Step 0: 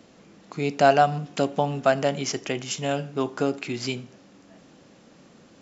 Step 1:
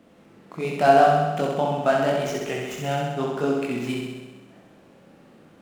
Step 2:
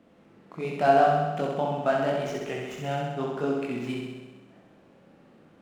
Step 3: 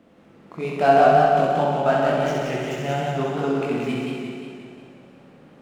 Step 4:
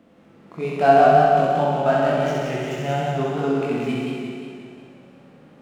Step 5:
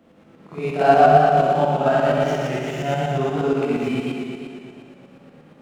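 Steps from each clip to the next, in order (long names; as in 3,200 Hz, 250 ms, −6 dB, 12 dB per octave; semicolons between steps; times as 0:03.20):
running median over 9 samples; multi-voice chorus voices 2, 0.86 Hz, delay 23 ms, depth 4.3 ms; flutter between parallel walls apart 11.2 metres, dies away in 1.2 s; level +2 dB
high-shelf EQ 5,600 Hz −8.5 dB; level −4 dB
feedback echo with a swinging delay time 177 ms, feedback 60%, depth 89 cents, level −3.5 dB; level +4 dB
harmonic and percussive parts rebalanced percussive −6 dB; level +2 dB
shaped tremolo saw up 8.5 Hz, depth 55%; on a send: backwards echo 53 ms −8 dB; on the sum: level +3 dB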